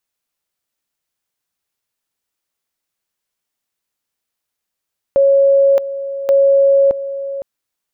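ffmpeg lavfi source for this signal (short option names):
-f lavfi -i "aevalsrc='pow(10,(-7.5-13*gte(mod(t,1.13),0.62))/20)*sin(2*PI*552*t)':d=2.26:s=44100"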